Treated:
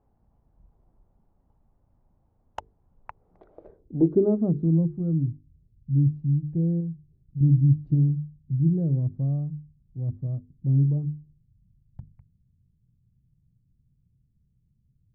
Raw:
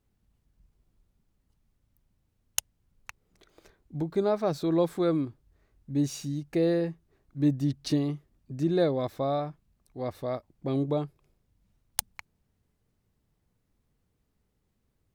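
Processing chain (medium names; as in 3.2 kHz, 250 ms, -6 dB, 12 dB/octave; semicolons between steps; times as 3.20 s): low-pass sweep 840 Hz -> 140 Hz, 3.34–4.90 s; hum notches 50/100/150/200/250/300/350/400/450 Hz; 6.80–7.41 s: compression, threshold -35 dBFS, peak gain reduction 6.5 dB; trim +6.5 dB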